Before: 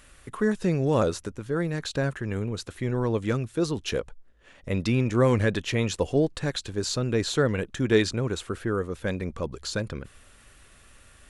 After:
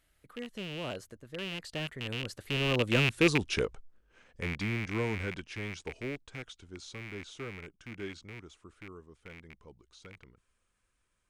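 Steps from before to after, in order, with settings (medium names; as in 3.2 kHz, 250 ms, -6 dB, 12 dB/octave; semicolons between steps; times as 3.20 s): rattle on loud lows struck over -30 dBFS, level -14 dBFS; Doppler pass-by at 3.23 s, 39 m/s, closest 16 m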